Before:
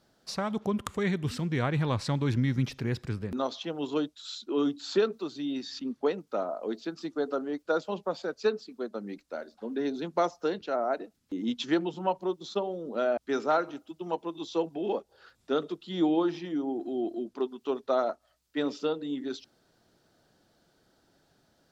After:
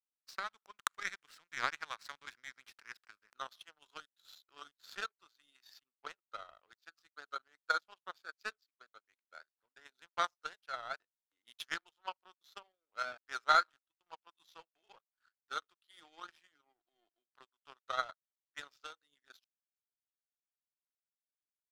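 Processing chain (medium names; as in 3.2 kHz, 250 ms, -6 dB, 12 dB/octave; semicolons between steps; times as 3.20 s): resonant high-pass 1.4 kHz, resonance Q 2.7; power-law waveshaper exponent 2; trim +1.5 dB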